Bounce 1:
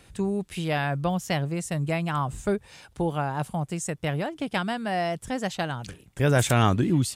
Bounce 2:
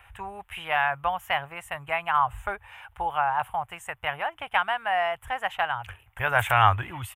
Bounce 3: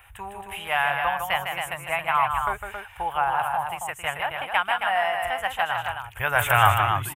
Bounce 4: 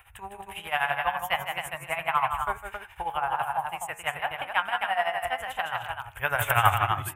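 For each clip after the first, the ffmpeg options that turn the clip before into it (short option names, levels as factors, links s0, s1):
-af "firequalizer=gain_entry='entry(100,0);entry(150,-21);entry(240,-25);entry(810,8);entry(3000,3);entry(4400,-24);entry(13000,1)':delay=0.05:min_phase=1"
-filter_complex "[0:a]crystalizer=i=1.5:c=0,asplit=2[s0][s1];[s1]aecho=0:1:154.5|271.1:0.501|0.501[s2];[s0][s2]amix=inputs=2:normalize=0"
-af "tremolo=f=12:d=0.77,bandreject=f=93.02:t=h:w=4,bandreject=f=186.04:t=h:w=4,bandreject=f=279.06:t=h:w=4,bandreject=f=372.08:t=h:w=4,bandreject=f=465.1:t=h:w=4,bandreject=f=558.12:t=h:w=4,bandreject=f=651.14:t=h:w=4,bandreject=f=744.16:t=h:w=4,bandreject=f=837.18:t=h:w=4,bandreject=f=930.2:t=h:w=4,bandreject=f=1023.22:t=h:w=4,bandreject=f=1116.24:t=h:w=4,bandreject=f=1209.26:t=h:w=4,bandreject=f=1302.28:t=h:w=4,bandreject=f=1395.3:t=h:w=4,bandreject=f=1488.32:t=h:w=4,bandreject=f=1581.34:t=h:w=4,bandreject=f=1674.36:t=h:w=4,bandreject=f=1767.38:t=h:w=4,bandreject=f=1860.4:t=h:w=4,bandreject=f=1953.42:t=h:w=4,bandreject=f=2046.44:t=h:w=4,bandreject=f=2139.46:t=h:w=4,bandreject=f=2232.48:t=h:w=4,bandreject=f=2325.5:t=h:w=4,bandreject=f=2418.52:t=h:w=4,bandreject=f=2511.54:t=h:w=4,bandreject=f=2604.56:t=h:w=4,bandreject=f=2697.58:t=h:w=4"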